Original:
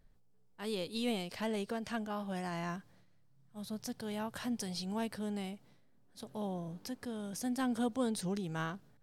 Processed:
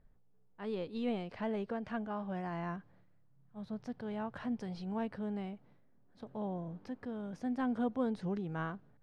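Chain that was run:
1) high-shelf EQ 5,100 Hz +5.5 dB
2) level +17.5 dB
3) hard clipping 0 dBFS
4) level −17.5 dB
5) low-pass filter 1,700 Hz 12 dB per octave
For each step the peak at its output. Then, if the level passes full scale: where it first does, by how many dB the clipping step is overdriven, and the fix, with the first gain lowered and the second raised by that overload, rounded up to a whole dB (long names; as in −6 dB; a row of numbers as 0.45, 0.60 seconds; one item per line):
−23.0, −5.5, −5.5, −23.0, −24.0 dBFS
no step passes full scale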